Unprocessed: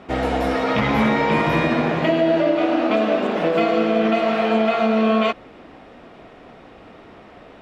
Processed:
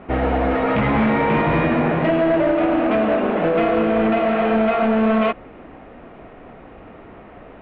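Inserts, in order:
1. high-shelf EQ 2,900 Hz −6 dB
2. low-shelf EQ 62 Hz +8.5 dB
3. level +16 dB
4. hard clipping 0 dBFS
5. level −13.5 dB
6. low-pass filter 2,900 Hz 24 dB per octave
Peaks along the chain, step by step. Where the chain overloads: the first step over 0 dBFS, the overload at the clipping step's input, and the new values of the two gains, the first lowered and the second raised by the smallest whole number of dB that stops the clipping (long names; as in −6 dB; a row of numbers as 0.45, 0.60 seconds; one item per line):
−8.0, −7.5, +8.5, 0.0, −13.5, −12.0 dBFS
step 3, 8.5 dB
step 3 +7 dB, step 5 −4.5 dB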